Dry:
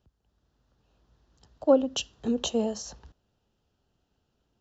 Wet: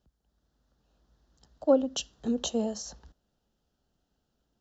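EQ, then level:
graphic EQ with 15 bands 100 Hz −10 dB, 400 Hz −4 dB, 1,000 Hz −4 dB, 2,500 Hz −7 dB
0.0 dB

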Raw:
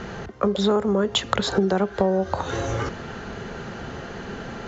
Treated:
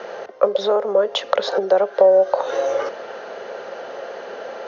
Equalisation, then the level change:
high-pass with resonance 550 Hz, resonance Q 4.9
Butterworth low-pass 6,400 Hz 96 dB per octave
−1.0 dB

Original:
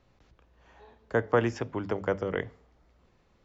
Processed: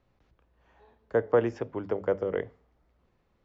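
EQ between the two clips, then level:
low-pass filter 3,300 Hz 6 dB per octave
dynamic equaliser 480 Hz, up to +8 dB, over −40 dBFS, Q 1.1
−5.0 dB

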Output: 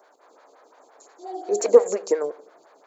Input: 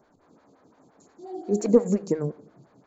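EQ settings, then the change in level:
high-pass filter 460 Hz 24 dB per octave
+8.5 dB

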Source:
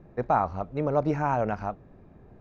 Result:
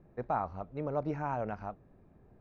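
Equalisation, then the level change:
high-frequency loss of the air 70 metres
−8.5 dB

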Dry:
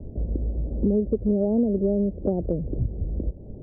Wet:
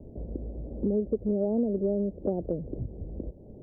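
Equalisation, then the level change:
low-shelf EQ 150 Hz −10 dB
−2.5 dB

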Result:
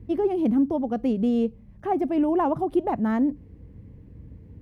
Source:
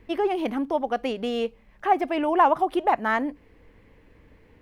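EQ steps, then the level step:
high-pass filter 79 Hz 12 dB per octave
bass and treble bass +15 dB, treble +9 dB
tilt shelving filter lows +9.5 dB, about 770 Hz
−6.5 dB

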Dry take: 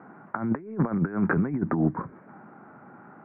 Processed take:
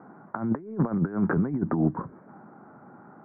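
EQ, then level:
low-pass filter 1,300 Hz 12 dB per octave
0.0 dB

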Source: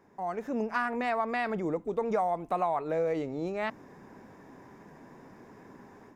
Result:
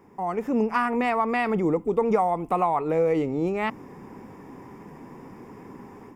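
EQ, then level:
thirty-one-band graphic EQ 630 Hz −9 dB, 1,600 Hz −10 dB, 4,000 Hz −12 dB, 6,300 Hz −7 dB
+9.0 dB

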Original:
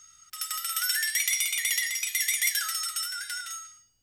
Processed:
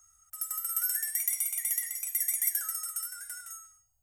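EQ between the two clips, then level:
drawn EQ curve 100 Hz 0 dB, 180 Hz −21 dB, 340 Hz −29 dB, 680 Hz +1 dB, 4,100 Hz −27 dB, 7,400 Hz −4 dB, 13,000 Hz +3 dB
0.0 dB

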